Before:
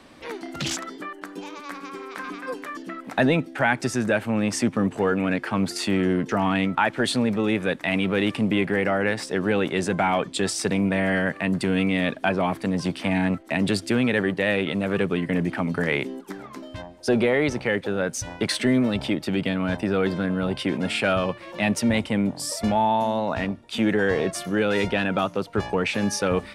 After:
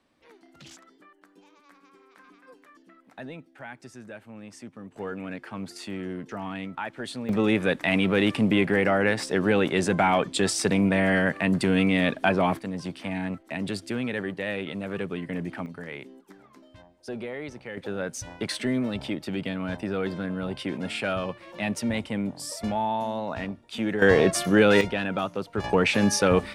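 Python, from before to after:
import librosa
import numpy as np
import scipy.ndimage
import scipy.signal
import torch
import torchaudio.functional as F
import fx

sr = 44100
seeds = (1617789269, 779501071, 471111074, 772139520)

y = fx.gain(x, sr, db=fx.steps((0.0, -20.0), (4.96, -12.0), (7.29, 0.5), (12.59, -8.0), (15.66, -14.5), (17.77, -6.0), (24.02, 4.5), (24.81, -4.5), (25.64, 2.5)))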